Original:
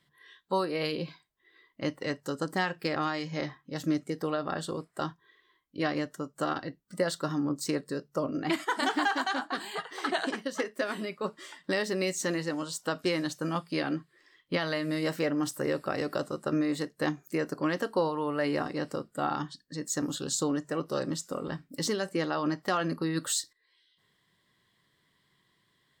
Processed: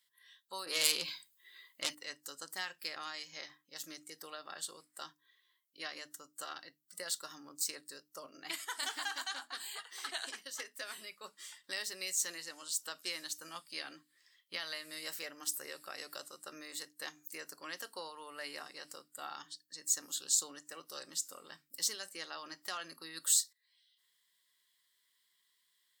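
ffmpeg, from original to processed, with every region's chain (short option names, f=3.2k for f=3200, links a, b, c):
-filter_complex "[0:a]asettb=1/sr,asplit=3[a][b][c];[a]atrim=end=0.664[d];[b]atrim=start=0.66:end=1.95,asetpts=PTS-STARTPTS,afade=t=in:d=0.004:c=qsin,afade=t=out:st=1.286:d=0.004:c=qsin,bandreject=f=5.7k:w=8.8,aeval=exprs='0.112*sin(PI/2*2.24*val(0)/0.112)':c=same,adynamicequalizer=threshold=0.00794:dfrequency=2200:dqfactor=0.7:tfrequency=2200:tqfactor=0.7:attack=5:release=100:ratio=0.375:range=2:mode=boostabove:tftype=highshelf[e];[c]atrim=start=1.946[f];[d][e]acrossfade=d=0.004:c1=hsin:c2=qsin[g];[g][f]acrossfade=d=0.004:c1=qsin:c2=hsin,aderivative,bandreject=f=50:t=h:w=6,bandreject=f=100:t=h:w=6,bandreject=f=150:t=h:w=6,bandreject=f=200:t=h:w=6,bandreject=f=250:t=h:w=6,bandreject=f=300:t=h:w=6,volume=2.5dB"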